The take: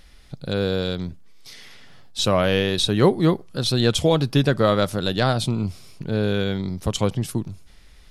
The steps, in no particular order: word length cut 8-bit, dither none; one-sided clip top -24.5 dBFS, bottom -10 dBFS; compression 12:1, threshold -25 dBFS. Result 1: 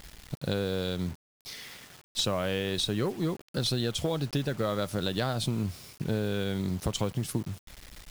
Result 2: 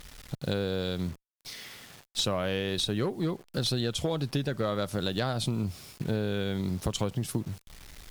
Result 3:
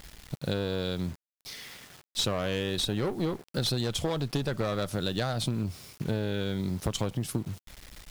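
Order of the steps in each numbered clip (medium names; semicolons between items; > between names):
compression > one-sided clip > word length cut; word length cut > compression > one-sided clip; one-sided clip > word length cut > compression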